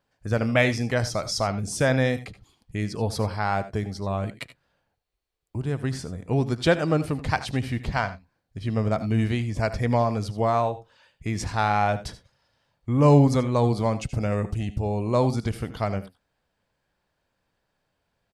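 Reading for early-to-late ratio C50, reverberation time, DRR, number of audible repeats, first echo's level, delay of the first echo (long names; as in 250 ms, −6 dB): no reverb audible, no reverb audible, no reverb audible, 1, −16.0 dB, 76 ms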